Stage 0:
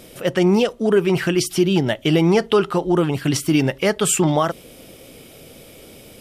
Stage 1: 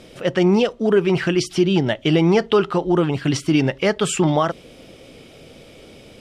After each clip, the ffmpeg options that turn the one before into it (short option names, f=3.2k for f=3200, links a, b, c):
-af "lowpass=5.7k"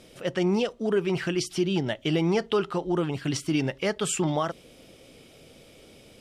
-af "highshelf=f=6.7k:g=9,volume=-8.5dB"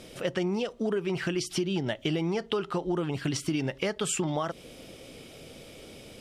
-af "acompressor=threshold=-31dB:ratio=5,volume=4.5dB"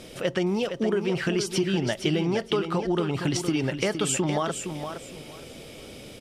-af "aecho=1:1:465|930|1395:0.398|0.0876|0.0193,volume=3.5dB"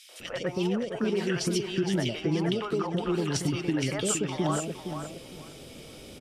-filter_complex "[0:a]acrossover=split=560|2100[a][b][c];[b]adelay=90[d];[a]adelay=200[e];[e][d][c]amix=inputs=3:normalize=0,volume=-1.5dB"